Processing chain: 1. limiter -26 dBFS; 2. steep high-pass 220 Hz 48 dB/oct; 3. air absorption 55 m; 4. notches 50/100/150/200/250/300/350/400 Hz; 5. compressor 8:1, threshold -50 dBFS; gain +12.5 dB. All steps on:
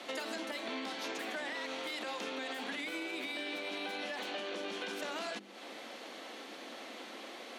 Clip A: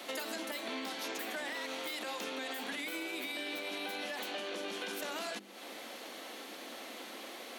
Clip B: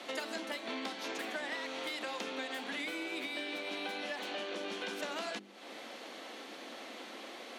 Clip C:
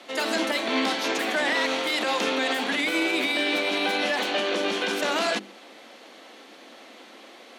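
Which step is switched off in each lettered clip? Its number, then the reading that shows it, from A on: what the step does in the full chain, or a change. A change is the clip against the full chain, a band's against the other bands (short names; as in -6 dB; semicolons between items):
3, 8 kHz band +5.0 dB; 1, mean gain reduction 1.5 dB; 5, mean gain reduction 10.0 dB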